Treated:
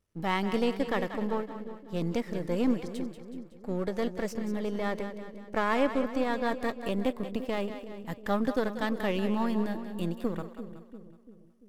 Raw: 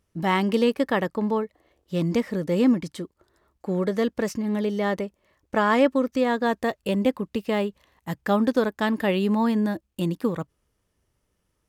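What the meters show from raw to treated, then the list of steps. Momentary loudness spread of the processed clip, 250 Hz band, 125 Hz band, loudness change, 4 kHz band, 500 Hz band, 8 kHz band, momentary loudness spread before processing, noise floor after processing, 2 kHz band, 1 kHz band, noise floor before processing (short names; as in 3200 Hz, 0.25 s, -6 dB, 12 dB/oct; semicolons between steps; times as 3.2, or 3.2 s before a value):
13 LU, -7.0 dB, -7.0 dB, -7.0 dB, -6.0 dB, -6.5 dB, -6.5 dB, 11 LU, -54 dBFS, -6.0 dB, -6.0 dB, -75 dBFS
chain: half-wave gain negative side -7 dB; split-band echo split 470 Hz, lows 0.343 s, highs 0.186 s, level -10 dB; gain -5 dB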